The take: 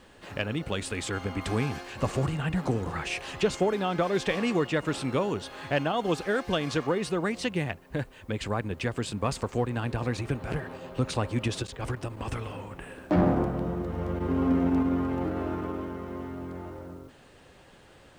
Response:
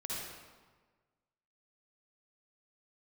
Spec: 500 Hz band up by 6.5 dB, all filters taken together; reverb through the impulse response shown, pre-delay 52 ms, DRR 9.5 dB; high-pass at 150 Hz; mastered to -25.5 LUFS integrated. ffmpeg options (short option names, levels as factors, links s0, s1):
-filter_complex "[0:a]highpass=150,equalizer=f=500:t=o:g=8,asplit=2[s0][s1];[1:a]atrim=start_sample=2205,adelay=52[s2];[s1][s2]afir=irnorm=-1:irlink=0,volume=0.266[s3];[s0][s3]amix=inputs=2:normalize=0,volume=1.06"